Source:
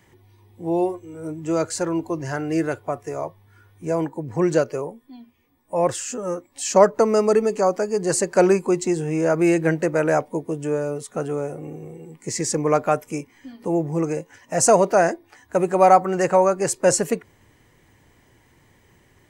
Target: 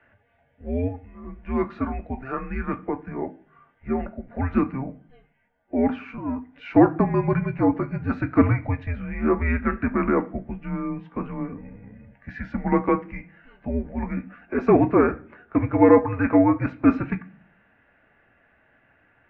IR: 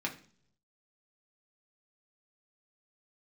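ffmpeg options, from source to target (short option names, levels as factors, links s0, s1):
-filter_complex "[0:a]highpass=f=340:t=q:w=0.5412,highpass=f=340:t=q:w=1.307,lowpass=f=2800:t=q:w=0.5176,lowpass=f=2800:t=q:w=0.7071,lowpass=f=2800:t=q:w=1.932,afreqshift=-270,asplit=2[s0][s1];[1:a]atrim=start_sample=2205,lowshelf=f=410:g=-8.5[s2];[s1][s2]afir=irnorm=-1:irlink=0,volume=0.668[s3];[s0][s3]amix=inputs=2:normalize=0,volume=0.668"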